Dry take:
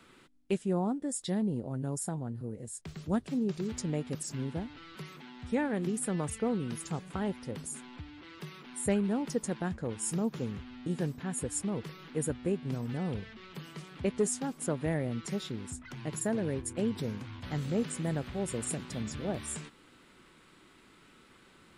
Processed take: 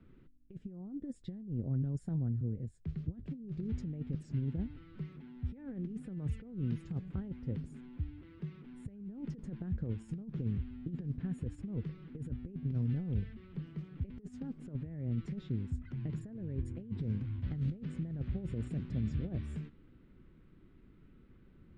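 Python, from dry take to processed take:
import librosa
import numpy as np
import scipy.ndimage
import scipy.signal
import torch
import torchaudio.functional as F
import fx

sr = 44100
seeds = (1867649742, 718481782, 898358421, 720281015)

y = fx.over_compress(x, sr, threshold_db=-35.0, ratio=-0.5)
y = fx.tone_stack(y, sr, knobs='10-0-1')
y = fx.env_lowpass(y, sr, base_hz=1300.0, full_db=-31.5)
y = y * 10.0 ** (15.0 / 20.0)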